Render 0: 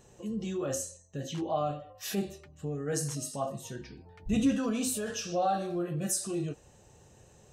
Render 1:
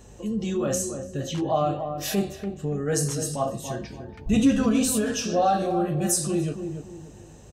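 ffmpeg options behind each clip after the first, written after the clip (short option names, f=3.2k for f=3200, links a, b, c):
-filter_complex "[0:a]aeval=exprs='val(0)+0.00158*(sin(2*PI*50*n/s)+sin(2*PI*2*50*n/s)/2+sin(2*PI*3*50*n/s)/3+sin(2*PI*4*50*n/s)/4+sin(2*PI*5*50*n/s)/5)':c=same,asplit=2[a][b];[b]adelay=288,lowpass=f=900:p=1,volume=-6.5dB,asplit=2[c][d];[d]adelay=288,lowpass=f=900:p=1,volume=0.36,asplit=2[e][f];[f]adelay=288,lowpass=f=900:p=1,volume=0.36,asplit=2[g][h];[h]adelay=288,lowpass=f=900:p=1,volume=0.36[i];[a][c][e][g][i]amix=inputs=5:normalize=0,volume=7dB"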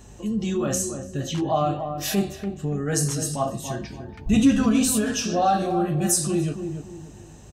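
-af "equalizer=f=500:t=o:w=0.42:g=-7,volume=2.5dB"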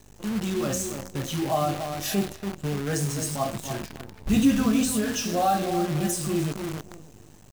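-filter_complex "[0:a]acrossover=split=3400[a][b];[b]alimiter=limit=-17.5dB:level=0:latency=1:release=273[c];[a][c]amix=inputs=2:normalize=0,acrusher=bits=6:dc=4:mix=0:aa=0.000001,volume=-2.5dB"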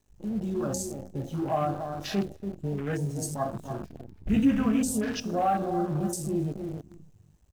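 -af "afwtdn=0.0178,volume=-2.5dB"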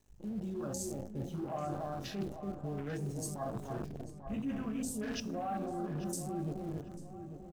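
-filter_complex "[0:a]areverse,acompressor=threshold=-36dB:ratio=6,areverse,asplit=2[a][b];[b]adelay=842,lowpass=f=1.8k:p=1,volume=-9dB,asplit=2[c][d];[d]adelay=842,lowpass=f=1.8k:p=1,volume=0.4,asplit=2[e][f];[f]adelay=842,lowpass=f=1.8k:p=1,volume=0.4,asplit=2[g][h];[h]adelay=842,lowpass=f=1.8k:p=1,volume=0.4[i];[a][c][e][g][i]amix=inputs=5:normalize=0"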